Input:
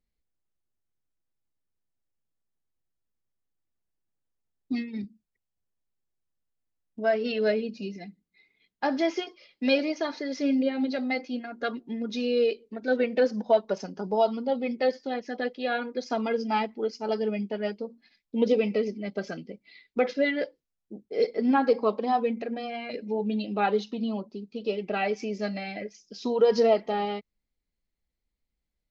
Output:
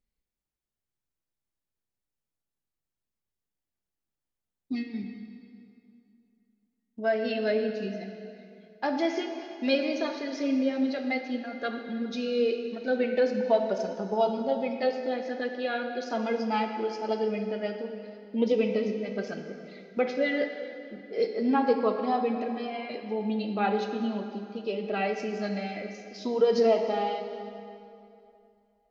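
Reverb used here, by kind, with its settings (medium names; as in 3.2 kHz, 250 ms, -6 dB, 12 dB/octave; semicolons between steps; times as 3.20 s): plate-style reverb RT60 2.7 s, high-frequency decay 0.8×, DRR 4.5 dB; trim -2.5 dB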